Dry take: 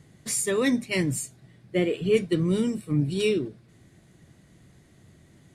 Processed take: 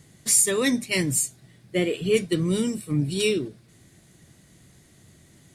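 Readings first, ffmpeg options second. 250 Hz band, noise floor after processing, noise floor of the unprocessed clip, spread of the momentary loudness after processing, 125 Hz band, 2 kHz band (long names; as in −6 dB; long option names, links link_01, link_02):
0.0 dB, −56 dBFS, −57 dBFS, 10 LU, 0.0 dB, +3.0 dB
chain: -af "highshelf=frequency=3600:gain=10.5"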